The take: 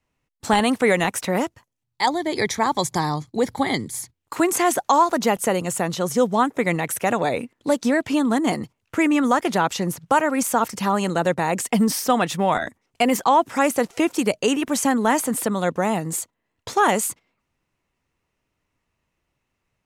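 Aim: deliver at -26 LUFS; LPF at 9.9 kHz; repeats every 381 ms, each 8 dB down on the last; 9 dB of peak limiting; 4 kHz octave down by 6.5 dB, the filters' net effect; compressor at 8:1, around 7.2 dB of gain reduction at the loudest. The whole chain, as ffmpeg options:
-af "lowpass=9900,equalizer=f=4000:t=o:g=-9,acompressor=threshold=0.1:ratio=8,alimiter=limit=0.126:level=0:latency=1,aecho=1:1:381|762|1143|1524|1905:0.398|0.159|0.0637|0.0255|0.0102,volume=1.26"

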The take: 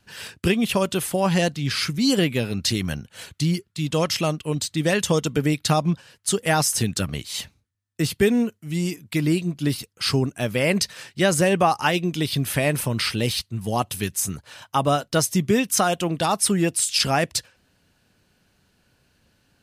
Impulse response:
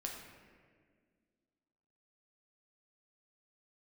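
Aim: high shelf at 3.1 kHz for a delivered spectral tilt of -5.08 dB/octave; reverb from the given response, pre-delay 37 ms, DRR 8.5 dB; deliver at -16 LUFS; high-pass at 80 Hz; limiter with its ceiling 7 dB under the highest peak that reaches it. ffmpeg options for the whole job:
-filter_complex "[0:a]highpass=80,highshelf=f=3100:g=-7,alimiter=limit=0.237:level=0:latency=1,asplit=2[s0][s1];[1:a]atrim=start_sample=2205,adelay=37[s2];[s1][s2]afir=irnorm=-1:irlink=0,volume=0.398[s3];[s0][s3]amix=inputs=2:normalize=0,volume=2.66"

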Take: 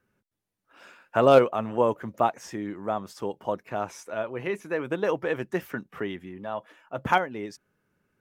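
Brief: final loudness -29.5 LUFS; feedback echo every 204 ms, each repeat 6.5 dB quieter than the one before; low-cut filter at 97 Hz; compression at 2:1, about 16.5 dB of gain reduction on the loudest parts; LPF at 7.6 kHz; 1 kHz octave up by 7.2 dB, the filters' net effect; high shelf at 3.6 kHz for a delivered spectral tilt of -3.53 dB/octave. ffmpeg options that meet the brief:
-af "highpass=97,lowpass=7600,equalizer=f=1000:t=o:g=9,highshelf=f=3600:g=8.5,acompressor=threshold=0.01:ratio=2,aecho=1:1:204|408|612|816|1020|1224:0.473|0.222|0.105|0.0491|0.0231|0.0109,volume=2"

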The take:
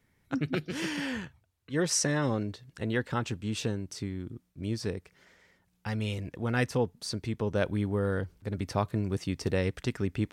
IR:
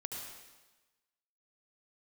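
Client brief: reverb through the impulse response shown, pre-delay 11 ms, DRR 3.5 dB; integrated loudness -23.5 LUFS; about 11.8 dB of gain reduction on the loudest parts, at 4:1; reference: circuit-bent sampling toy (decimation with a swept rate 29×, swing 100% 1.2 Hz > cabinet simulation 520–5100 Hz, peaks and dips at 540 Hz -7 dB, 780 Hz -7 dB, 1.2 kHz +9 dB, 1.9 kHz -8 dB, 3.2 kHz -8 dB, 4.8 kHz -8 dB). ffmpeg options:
-filter_complex "[0:a]acompressor=threshold=0.0126:ratio=4,asplit=2[s0][s1];[1:a]atrim=start_sample=2205,adelay=11[s2];[s1][s2]afir=irnorm=-1:irlink=0,volume=0.708[s3];[s0][s3]amix=inputs=2:normalize=0,acrusher=samples=29:mix=1:aa=0.000001:lfo=1:lforange=29:lforate=1.2,highpass=520,equalizer=f=540:t=q:w=4:g=-7,equalizer=f=780:t=q:w=4:g=-7,equalizer=f=1200:t=q:w=4:g=9,equalizer=f=1900:t=q:w=4:g=-8,equalizer=f=3200:t=q:w=4:g=-8,equalizer=f=4800:t=q:w=4:g=-8,lowpass=f=5100:w=0.5412,lowpass=f=5100:w=1.3066,volume=15.8"

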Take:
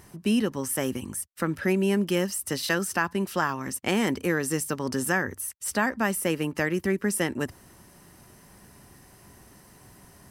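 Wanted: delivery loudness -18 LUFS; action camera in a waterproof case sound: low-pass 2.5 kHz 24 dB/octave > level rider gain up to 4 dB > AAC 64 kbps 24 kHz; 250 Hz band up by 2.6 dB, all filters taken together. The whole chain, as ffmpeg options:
-af "lowpass=f=2500:w=0.5412,lowpass=f=2500:w=1.3066,equalizer=f=250:t=o:g=3.5,dynaudnorm=m=1.58,volume=2.66" -ar 24000 -c:a aac -b:a 64k

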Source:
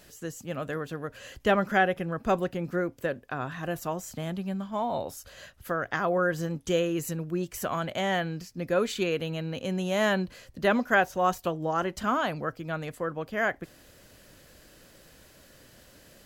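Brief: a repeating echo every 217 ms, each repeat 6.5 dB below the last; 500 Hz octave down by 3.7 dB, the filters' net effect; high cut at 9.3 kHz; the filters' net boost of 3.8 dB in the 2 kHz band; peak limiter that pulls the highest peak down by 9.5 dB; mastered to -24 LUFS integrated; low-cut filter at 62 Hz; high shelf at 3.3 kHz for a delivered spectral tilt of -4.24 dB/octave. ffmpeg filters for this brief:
-af "highpass=62,lowpass=9300,equalizer=f=500:t=o:g=-5,equalizer=f=2000:t=o:g=3.5,highshelf=f=3300:g=6.5,alimiter=limit=0.133:level=0:latency=1,aecho=1:1:217|434|651|868|1085|1302:0.473|0.222|0.105|0.0491|0.0231|0.0109,volume=2"

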